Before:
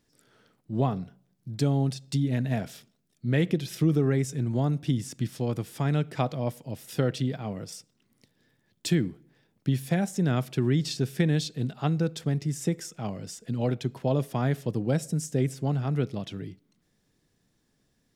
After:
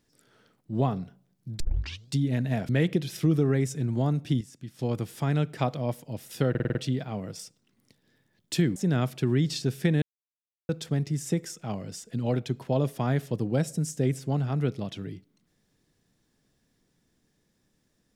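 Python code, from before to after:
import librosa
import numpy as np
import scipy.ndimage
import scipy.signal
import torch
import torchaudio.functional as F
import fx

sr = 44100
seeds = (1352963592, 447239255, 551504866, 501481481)

y = fx.edit(x, sr, fx.tape_start(start_s=1.6, length_s=0.51),
    fx.cut(start_s=2.69, length_s=0.58),
    fx.clip_gain(start_s=4.99, length_s=0.38, db=-11.0),
    fx.stutter(start_s=7.08, slice_s=0.05, count=6),
    fx.cut(start_s=9.09, length_s=1.02),
    fx.silence(start_s=11.37, length_s=0.67), tone=tone)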